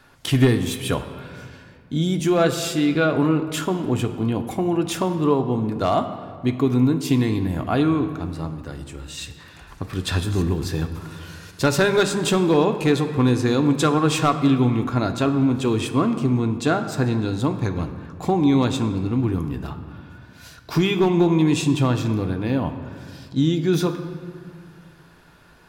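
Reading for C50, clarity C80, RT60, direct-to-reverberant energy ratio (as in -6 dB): 10.0 dB, 11.0 dB, 2.0 s, 6.0 dB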